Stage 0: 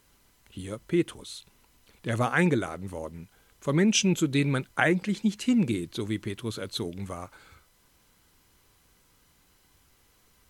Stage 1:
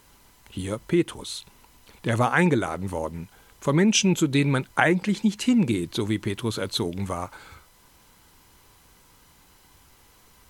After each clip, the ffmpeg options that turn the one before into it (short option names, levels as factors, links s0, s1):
-filter_complex "[0:a]equalizer=f=910:w=3.3:g=5.5,asplit=2[s0][s1];[s1]acompressor=threshold=0.0316:ratio=6,volume=1.26[s2];[s0][s2]amix=inputs=2:normalize=0"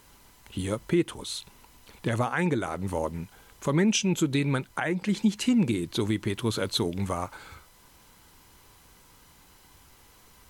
-af "alimiter=limit=0.188:level=0:latency=1:release=406"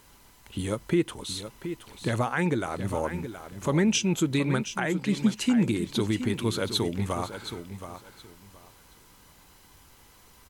-af "aecho=1:1:722|1444|2166:0.299|0.0627|0.0132"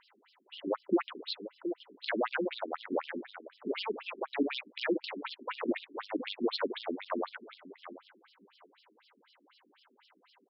-af "aeval=exprs='0.237*(cos(1*acos(clip(val(0)/0.237,-1,1)))-cos(1*PI/2))+0.0531*(cos(6*acos(clip(val(0)/0.237,-1,1)))-cos(6*PI/2))':c=same,afftfilt=real='re*between(b*sr/1024,280*pow(4000/280,0.5+0.5*sin(2*PI*4*pts/sr))/1.41,280*pow(4000/280,0.5+0.5*sin(2*PI*4*pts/sr))*1.41)':imag='im*between(b*sr/1024,280*pow(4000/280,0.5+0.5*sin(2*PI*4*pts/sr))/1.41,280*pow(4000/280,0.5+0.5*sin(2*PI*4*pts/sr))*1.41)':win_size=1024:overlap=0.75"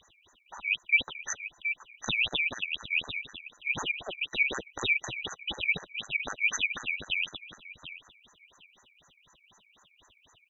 -af "afftfilt=real='real(if(lt(b,920),b+92*(1-2*mod(floor(b/92),2)),b),0)':imag='imag(if(lt(b,920),b+92*(1-2*mod(floor(b/92),2)),b),0)':win_size=2048:overlap=0.75,volume=1.5"